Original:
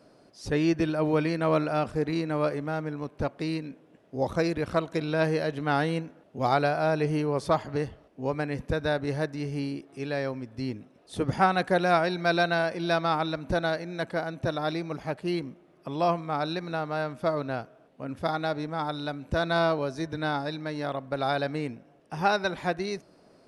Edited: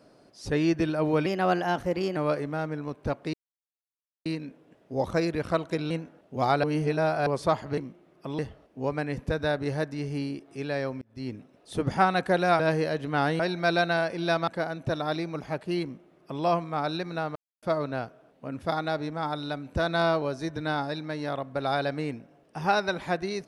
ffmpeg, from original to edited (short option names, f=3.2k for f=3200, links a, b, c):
-filter_complex "[0:a]asplit=15[a][b][c][d][e][f][g][h][i][j][k][l][m][n][o];[a]atrim=end=1.264[p];[b]atrim=start=1.26:end=2.31,asetpts=PTS-STARTPTS,asetrate=51156,aresample=44100,atrim=end_sample=39918,asetpts=PTS-STARTPTS[q];[c]atrim=start=2.306:end=3.48,asetpts=PTS-STARTPTS,afade=t=out:st=1.17:d=0.004:c=hsin,apad=pad_dur=0.92[r];[d]atrim=start=3.48:end=5.132,asetpts=PTS-STARTPTS,afade=t=in:d=0.004:c=hsin[s];[e]atrim=start=5.928:end=6.662[t];[f]atrim=start=6.658:end=7.292,asetpts=PTS-STARTPTS,areverse[u];[g]atrim=start=7.288:end=7.802[v];[h]atrim=start=15.388:end=16.002[w];[i]atrim=start=7.798:end=10.43,asetpts=PTS-STARTPTS,afade=t=out:st=2.628:d=0.004:c=hsin[x];[j]atrim=start=10.43:end=12.012,asetpts=PTS-STARTPTS,afade=t=in:d=0.33[y];[k]atrim=start=5.128:end=5.932[z];[l]atrim=start=12.008:end=13.092[aa];[m]atrim=start=14.038:end=16.92,asetpts=PTS-STARTPTS,afade=t=out:st=2.878:d=0.004:c=hsin[ab];[n]atrim=start=16.92:end=17.19,asetpts=PTS-STARTPTS,volume=0[ac];[o]atrim=start=17.19,asetpts=PTS-STARTPTS,afade=t=in:d=0.004:c=hsin[ad];[p][q]acrossfade=d=0.004:c1=hsin:c2=hsin[ae];[r][s]concat=n=2:v=0:a=1[af];[ae][af]acrossfade=d=0.004:c1=hsin:c2=hsin[ag];[ag][t]acrossfade=d=0.004:c1=hsin:c2=hsin[ah];[ah][u]acrossfade=d=0.004:c1=hsin:c2=hsin[ai];[ai][v]acrossfade=d=0.004:c1=hsin:c2=hsin[aj];[aj][w]acrossfade=d=0.004:c1=hsin:c2=hsin[ak];[x][y]concat=n=2:v=0:a=1[al];[ak][al]acrossfade=d=0.004:c1=hsin:c2=hsin[am];[am][z]acrossfade=d=0.004:c1=hsin:c2=hsin[an];[an][aa]acrossfade=d=0.004:c1=hsin:c2=hsin[ao];[ab][ac][ad]concat=n=3:v=0:a=1[ap];[ao][ap]acrossfade=d=0.004:c1=hsin:c2=hsin"